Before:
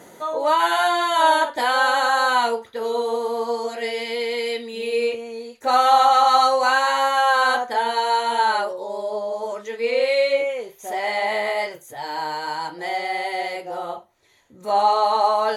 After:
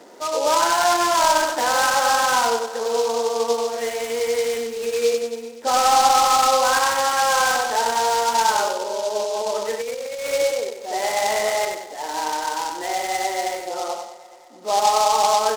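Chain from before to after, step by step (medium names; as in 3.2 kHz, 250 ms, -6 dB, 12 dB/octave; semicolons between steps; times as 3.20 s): median filter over 9 samples; high-pass 240 Hz 24 dB/octave; treble shelf 3.9 kHz -8 dB; feedback echo behind a low-pass 215 ms, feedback 68%, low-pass 3.2 kHz, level -19 dB; in parallel at -1.5 dB: peak limiter -14.5 dBFS, peak gain reduction 9 dB; on the sum: hard clipper -9 dBFS, distortion -22 dB; on a send: feedback delay 95 ms, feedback 32%, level -5 dB; 9.19–10.27 s: on the sum: compressor with a negative ratio -22 dBFS, ratio -1; delay time shaken by noise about 4.8 kHz, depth 0.057 ms; trim -4 dB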